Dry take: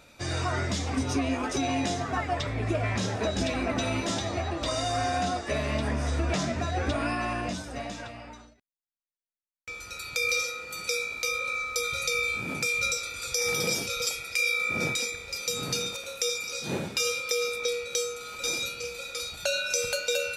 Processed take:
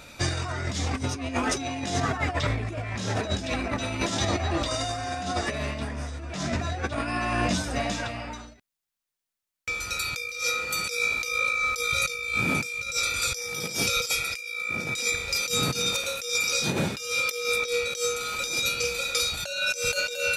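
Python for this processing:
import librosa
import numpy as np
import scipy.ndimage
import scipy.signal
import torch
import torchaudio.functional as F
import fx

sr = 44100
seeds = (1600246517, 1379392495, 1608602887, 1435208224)

y = fx.peak_eq(x, sr, hz=460.0, db=-3.0, octaves=2.0)
y = fx.over_compress(y, sr, threshold_db=-33.0, ratio=-0.5)
y = y * 10.0 ** (6.0 / 20.0)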